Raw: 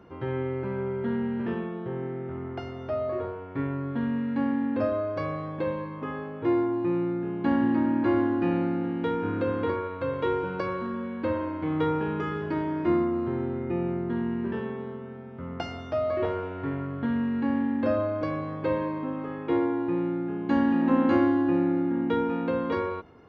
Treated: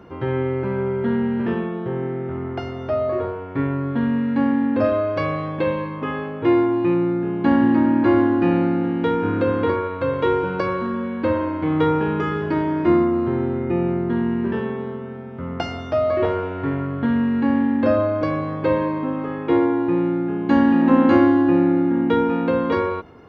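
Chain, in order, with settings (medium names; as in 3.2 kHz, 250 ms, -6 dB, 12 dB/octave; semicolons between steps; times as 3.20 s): 4.84–6.94 s: dynamic bell 2.8 kHz, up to +6 dB, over -53 dBFS, Q 1.4; trim +7.5 dB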